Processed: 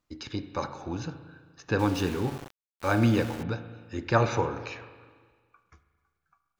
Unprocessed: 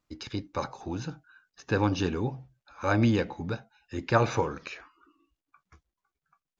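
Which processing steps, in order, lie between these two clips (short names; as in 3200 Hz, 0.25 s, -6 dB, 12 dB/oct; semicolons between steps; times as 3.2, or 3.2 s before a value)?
spring tank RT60 1.6 s, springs 35/42 ms, chirp 30 ms, DRR 10 dB; 1.79–3.43 sample gate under -36 dBFS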